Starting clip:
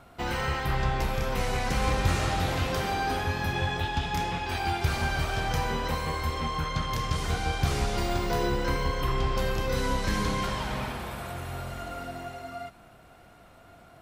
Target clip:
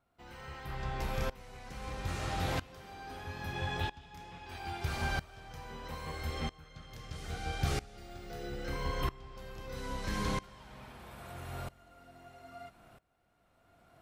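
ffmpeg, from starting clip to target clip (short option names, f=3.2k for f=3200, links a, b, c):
-filter_complex "[0:a]asettb=1/sr,asplit=3[a][b][c];[a]atrim=end=6.114[d];[b]atrim=start=6.11:end=8.73,asetpts=PTS-STARTPTS,afade=t=in:d=0.004:c=qsin,afade=t=out:st=2.616:d=0.004:c=qsin,asuperstop=centerf=1000:order=8:qfactor=6.4[e];[c]atrim=start=8.726[f];[d][e]acrossfade=d=0.004:c1=hsin:c2=qsin[g];[g][f]acrossfade=d=0.004:c1=qsin:c2=hsin,aeval=exprs='val(0)*pow(10,-22*if(lt(mod(-0.77*n/s,1),2*abs(-0.77)/1000),1-mod(-0.77*n/s,1)/(2*abs(-0.77)/1000),(mod(-0.77*n/s,1)-2*abs(-0.77)/1000)/(1-2*abs(-0.77)/1000))/20)':c=same,volume=-3.5dB"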